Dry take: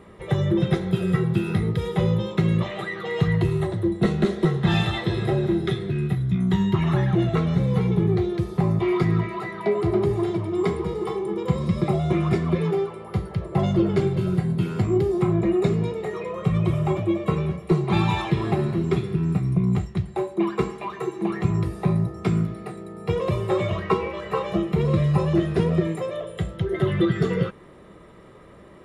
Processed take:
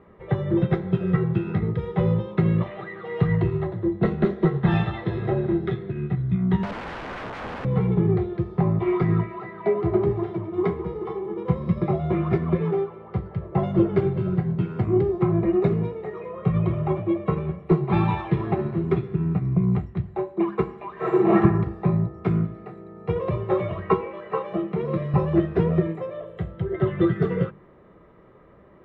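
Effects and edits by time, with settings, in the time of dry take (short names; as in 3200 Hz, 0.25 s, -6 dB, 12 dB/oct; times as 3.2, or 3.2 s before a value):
6.63–7.65 wrapped overs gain 23 dB
20.93–21.37 reverb throw, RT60 0.91 s, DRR -9.5 dB
24.01–25.14 HPF 170 Hz
whole clip: LPF 1900 Hz 12 dB/oct; notches 50/100/150/200/250/300/350 Hz; upward expander 1.5:1, over -29 dBFS; gain +3 dB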